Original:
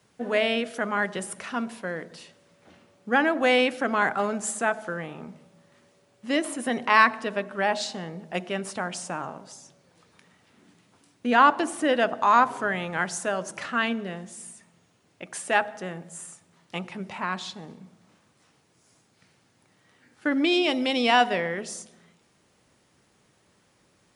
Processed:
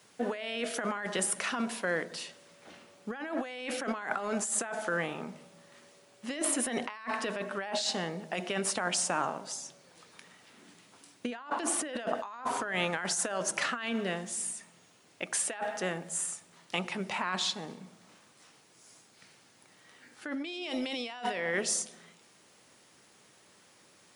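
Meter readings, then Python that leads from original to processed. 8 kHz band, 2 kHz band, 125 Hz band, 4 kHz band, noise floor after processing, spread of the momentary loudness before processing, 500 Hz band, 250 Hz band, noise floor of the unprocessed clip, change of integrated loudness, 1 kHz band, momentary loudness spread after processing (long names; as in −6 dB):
+5.0 dB, −9.0 dB, −4.0 dB, −5.0 dB, −62 dBFS, 18 LU, −8.0 dB, −8.0 dB, −65 dBFS, −8.0 dB, −11.5 dB, 10 LU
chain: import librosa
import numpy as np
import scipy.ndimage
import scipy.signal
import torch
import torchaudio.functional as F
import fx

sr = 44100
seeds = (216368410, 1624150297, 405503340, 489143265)

y = fx.highpass(x, sr, hz=280.0, slope=6)
y = fx.high_shelf(y, sr, hz=2600.0, db=4.5)
y = fx.over_compress(y, sr, threshold_db=-32.0, ratio=-1.0)
y = y * 10.0 ** (-2.5 / 20.0)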